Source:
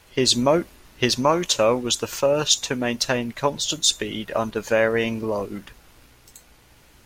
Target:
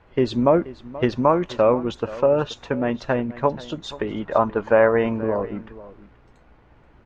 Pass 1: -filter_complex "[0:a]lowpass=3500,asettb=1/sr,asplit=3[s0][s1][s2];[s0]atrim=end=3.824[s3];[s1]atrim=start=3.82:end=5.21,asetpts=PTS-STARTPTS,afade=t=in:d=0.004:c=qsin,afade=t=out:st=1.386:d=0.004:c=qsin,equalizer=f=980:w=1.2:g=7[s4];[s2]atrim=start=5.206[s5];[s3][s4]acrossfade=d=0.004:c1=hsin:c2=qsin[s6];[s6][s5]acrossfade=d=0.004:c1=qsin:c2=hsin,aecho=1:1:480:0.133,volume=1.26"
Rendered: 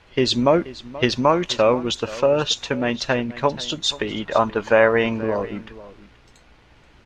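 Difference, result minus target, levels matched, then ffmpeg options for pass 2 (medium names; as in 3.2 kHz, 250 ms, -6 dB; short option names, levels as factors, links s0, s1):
4 kHz band +12.5 dB
-filter_complex "[0:a]lowpass=1400,asettb=1/sr,asplit=3[s0][s1][s2];[s0]atrim=end=3.824[s3];[s1]atrim=start=3.82:end=5.21,asetpts=PTS-STARTPTS,afade=t=in:d=0.004:c=qsin,afade=t=out:st=1.386:d=0.004:c=qsin,equalizer=f=980:w=1.2:g=7[s4];[s2]atrim=start=5.206[s5];[s3][s4]acrossfade=d=0.004:c1=hsin:c2=qsin[s6];[s6][s5]acrossfade=d=0.004:c1=qsin:c2=hsin,aecho=1:1:480:0.133,volume=1.26"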